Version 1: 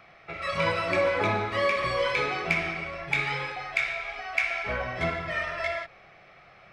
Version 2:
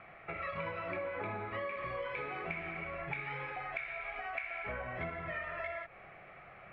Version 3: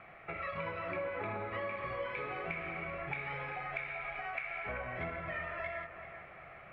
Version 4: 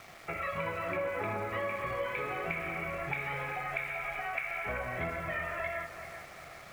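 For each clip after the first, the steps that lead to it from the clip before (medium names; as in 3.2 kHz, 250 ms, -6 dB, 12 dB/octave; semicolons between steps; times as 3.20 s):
low-pass 2.6 kHz 24 dB/octave; compression 5:1, threshold -38 dBFS, peak gain reduction 15.5 dB
feedback echo behind a low-pass 387 ms, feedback 47%, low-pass 2.9 kHz, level -10 dB
small samples zeroed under -53.5 dBFS; trim +4 dB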